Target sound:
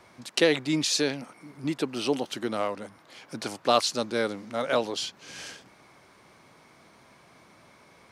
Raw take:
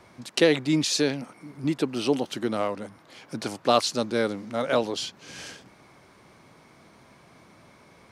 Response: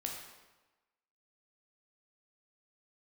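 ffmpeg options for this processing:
-af "lowshelf=f=400:g=-5.5"

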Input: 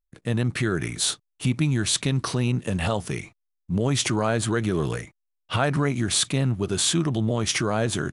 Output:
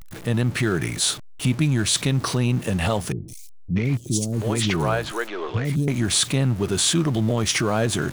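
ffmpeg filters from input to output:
-filter_complex "[0:a]aeval=exprs='val(0)+0.5*0.02*sgn(val(0))':c=same,asettb=1/sr,asplit=3[s0][s1][s2];[s0]atrim=end=3.124[s3];[s1]atrim=start=3.12:end=5.88,asetpts=PTS-STARTPTS,afade=t=in:d=0.004:c=qsin,afade=t=out:st=2.756:d=0.004:c=qsin,acrossover=split=390|4900[s4][s5][s6];[s6]adelay=160[s7];[s5]adelay=640[s8];[s4][s8][s7]amix=inputs=3:normalize=0,atrim=end_sample=121716[s9];[s2]atrim=start=5.876[s10];[s3][s9]acrossfade=d=0.004:c1=hsin:c2=qsin[s11];[s11][s10]acrossfade=d=0.004:c1=qsin:c2=hsin,volume=1.19"

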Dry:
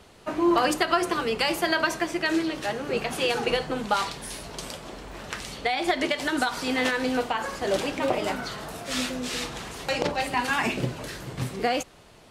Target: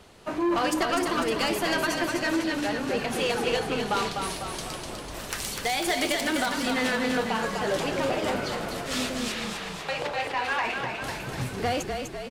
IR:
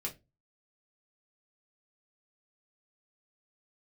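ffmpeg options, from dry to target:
-filter_complex "[0:a]asettb=1/sr,asplit=3[s0][s1][s2];[s0]atrim=end=9.324[s3];[s1]atrim=start=9.32:end=11.02,asetpts=PTS-STARTPTS,afade=t=in:d=0.004:c=qsin,afade=t=out:st=1.696:d=0.004:c=qsin,acrossover=split=490 3900:gain=0.224 1 0.224[s4][s5][s6];[s4][s5][s6]amix=inputs=3:normalize=0[s7];[s2]atrim=start=11.016[s8];[s3][s7]acrossfade=d=0.004:c1=hsin:c2=qsin[s9];[s9][s8]acrossfade=d=0.004:c1=qsin:c2=hsin,asoftclip=type=tanh:threshold=0.0944,asettb=1/sr,asplit=3[s10][s11][s12];[s10]atrim=end=5.144[s13];[s11]atrim=start=5.14:end=6.21,asetpts=PTS-STARTPTS,afade=t=in:d=0.004:c=qsin,afade=t=out:st=1.066:d=0.004:c=qsin,aemphasis=mode=production:type=50fm[s14];[s12]atrim=start=6.206[s15];[s13][s14]acrossfade=d=0.004:c1=hsin:c2=qsin[s16];[s16][s15]acrossfade=d=0.004:c1=qsin:c2=hsin,asplit=9[s17][s18][s19][s20][s21][s22][s23][s24][s25];[s18]adelay=249,afreqshift=-31,volume=0.562[s26];[s19]adelay=498,afreqshift=-62,volume=0.331[s27];[s20]adelay=747,afreqshift=-93,volume=0.195[s28];[s21]adelay=996,afreqshift=-124,volume=0.116[s29];[s22]adelay=1245,afreqshift=-155,volume=0.0684[s30];[s23]adelay=1494,afreqshift=-186,volume=0.0403[s31];[s24]adelay=1743,afreqshift=-217,volume=0.0237[s32];[s25]adelay=1992,afreqshift=-248,volume=0.014[s33];[s17][s26][s27][s28][s29][s30][s31][s32][s33]amix=inputs=9:normalize=0"

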